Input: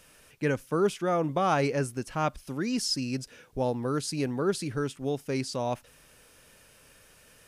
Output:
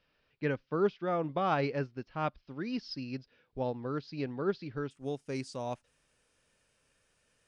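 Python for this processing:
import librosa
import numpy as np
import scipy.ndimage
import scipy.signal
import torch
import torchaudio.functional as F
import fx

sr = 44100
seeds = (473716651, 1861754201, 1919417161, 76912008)

y = fx.steep_lowpass(x, sr, hz=fx.steps((0.0, 4900.0), (4.9, 9900.0)), slope=48)
y = fx.upward_expand(y, sr, threshold_db=-46.0, expansion=1.5)
y = y * librosa.db_to_amplitude(-2.5)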